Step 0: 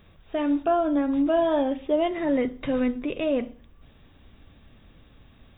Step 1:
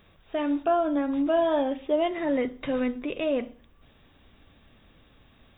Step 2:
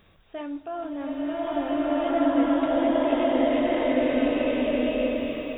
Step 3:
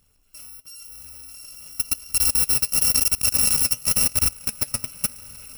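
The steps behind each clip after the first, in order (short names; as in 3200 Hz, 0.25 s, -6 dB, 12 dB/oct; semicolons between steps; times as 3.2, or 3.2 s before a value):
low shelf 260 Hz -6.5 dB
reverse delay 0.377 s, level -8.5 dB; reverse; compressor, threshold -31 dBFS, peak gain reduction 11.5 dB; reverse; bloom reverb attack 1.69 s, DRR -11 dB
FFT order left unsorted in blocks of 128 samples; level quantiser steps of 23 dB; flange 0.94 Hz, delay 0.4 ms, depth 8.8 ms, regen +45%; gain +9 dB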